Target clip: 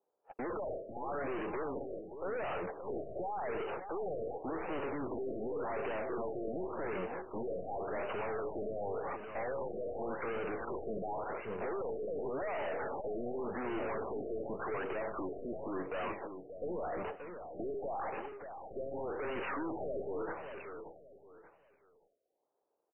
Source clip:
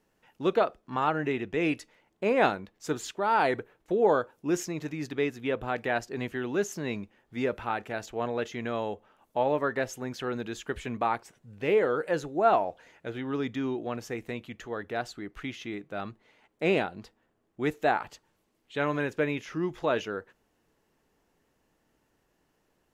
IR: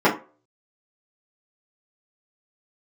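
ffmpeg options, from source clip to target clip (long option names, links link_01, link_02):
-filter_complex "[0:a]lowshelf=frequency=170:gain=-8,agate=range=-35dB:threshold=-57dB:ratio=16:detection=peak,asplit=2[link_01][link_02];[link_02]highpass=frequency=720:poles=1,volume=37dB,asoftclip=type=tanh:threshold=-8dB[link_03];[link_01][link_03]amix=inputs=2:normalize=0,lowpass=frequency=1100:poles=1,volume=-6dB,acrossover=split=160|3000[link_04][link_05][link_06];[link_05]acompressor=threshold=-20dB:ratio=3[link_07];[link_04][link_07][link_06]amix=inputs=3:normalize=0,alimiter=limit=-16.5dB:level=0:latency=1:release=140,asetrate=40440,aresample=44100,atempo=1.09051,equalizer=frequency=125:width_type=o:width=1:gain=-10,equalizer=frequency=250:width_type=o:width=1:gain=-7,equalizer=frequency=500:width_type=o:width=1:gain=9,equalizer=frequency=1000:width_type=o:width=1:gain=6,equalizer=frequency=2000:width_type=o:width=1:gain=-7,equalizer=frequency=8000:width_type=o:width=1:gain=8,adynamicsmooth=sensitivity=5:basefreq=980,aeval=exprs='(tanh(70.8*val(0)+0.25)-tanh(0.25))/70.8':channel_layout=same,aecho=1:1:580|1160|1740:0.376|0.109|0.0316,afftfilt=real='re*lt(b*sr/1024,700*pow(3100/700,0.5+0.5*sin(2*PI*0.89*pts/sr)))':imag='im*lt(b*sr/1024,700*pow(3100/700,0.5+0.5*sin(2*PI*0.89*pts/sr)))':win_size=1024:overlap=0.75"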